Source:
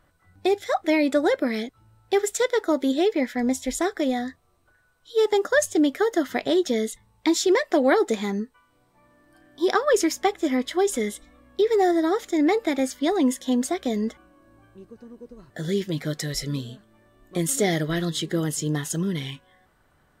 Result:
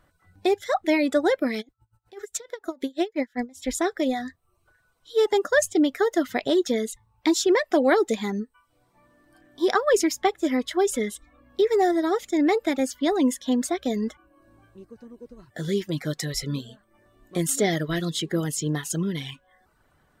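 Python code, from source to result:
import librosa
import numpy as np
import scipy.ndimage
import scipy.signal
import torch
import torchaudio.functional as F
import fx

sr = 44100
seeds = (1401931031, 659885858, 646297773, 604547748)

y = fx.dereverb_blind(x, sr, rt60_s=0.51)
y = fx.tremolo_db(y, sr, hz=fx.line((1.6, 8.8), (3.62, 4.5)), depth_db=28, at=(1.6, 3.62), fade=0.02)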